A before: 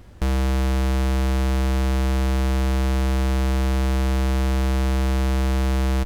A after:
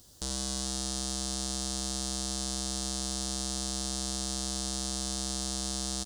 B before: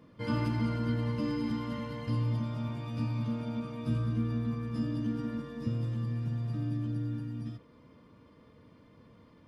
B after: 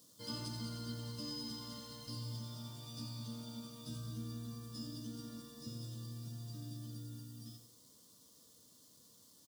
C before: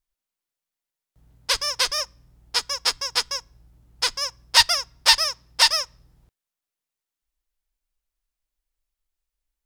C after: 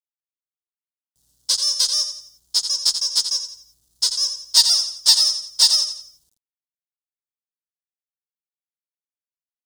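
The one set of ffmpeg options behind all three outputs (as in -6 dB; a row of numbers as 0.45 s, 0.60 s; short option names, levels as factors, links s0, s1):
-af "aresample=22050,aresample=44100,lowshelf=f=97:g=-9,aecho=1:1:86|172|258|344:0.335|0.127|0.0484|0.0184,acrusher=bits=10:mix=0:aa=0.000001,highshelf=f=2900:g=-9,aexciter=amount=12.1:drive=9.3:freq=3700,volume=0.224"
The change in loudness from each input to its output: -10.0 LU, -12.0 LU, +3.5 LU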